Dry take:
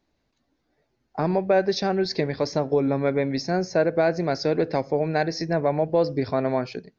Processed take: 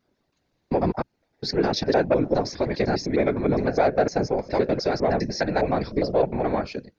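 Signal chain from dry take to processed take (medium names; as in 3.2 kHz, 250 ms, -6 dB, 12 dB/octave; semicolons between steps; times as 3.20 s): slices played last to first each 102 ms, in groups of 7; Chebyshev shaper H 5 -31 dB, 6 -43 dB, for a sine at -9.5 dBFS; whisper effect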